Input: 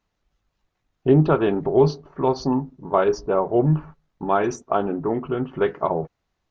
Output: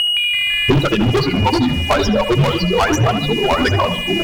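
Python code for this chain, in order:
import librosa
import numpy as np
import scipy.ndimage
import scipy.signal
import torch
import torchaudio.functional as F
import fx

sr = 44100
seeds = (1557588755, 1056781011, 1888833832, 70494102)

p1 = fx.bin_expand(x, sr, power=3.0)
p2 = p1 + 10.0 ** (-48.0 / 20.0) * np.sin(2.0 * np.pi * 2900.0 * np.arange(len(p1)) / sr)
p3 = fx.stretch_grains(p2, sr, factor=0.65, grain_ms=42.0)
p4 = np.clip(p3, -10.0 ** (-22.0 / 20.0), 10.0 ** (-22.0 / 20.0))
p5 = fx.tilt_shelf(p4, sr, db=-5.0, hz=1200.0)
p6 = fx.echo_pitch(p5, sr, ms=167, semitones=-3, count=3, db_per_echo=-6.0)
p7 = fx.leveller(p6, sr, passes=3)
p8 = fx.low_shelf(p7, sr, hz=110.0, db=10.5)
p9 = p8 + fx.echo_wet_lowpass(p8, sr, ms=72, feedback_pct=35, hz=3400.0, wet_db=-10, dry=0)
p10 = fx.band_squash(p9, sr, depth_pct=100)
y = p10 * 10.0 ** (7.0 / 20.0)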